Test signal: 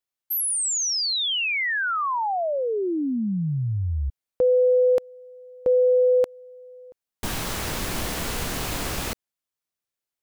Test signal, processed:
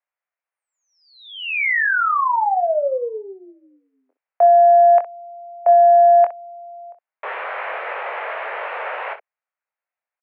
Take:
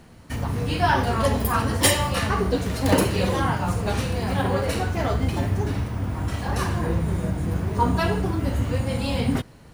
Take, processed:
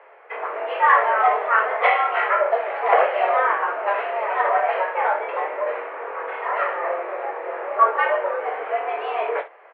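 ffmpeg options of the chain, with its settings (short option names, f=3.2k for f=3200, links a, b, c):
-af "acontrast=45,highpass=f=330:t=q:w=0.5412,highpass=f=330:t=q:w=1.307,lowpass=f=2.2k:t=q:w=0.5176,lowpass=f=2.2k:t=q:w=0.7071,lowpass=f=2.2k:t=q:w=1.932,afreqshift=190,aecho=1:1:23|63:0.447|0.211"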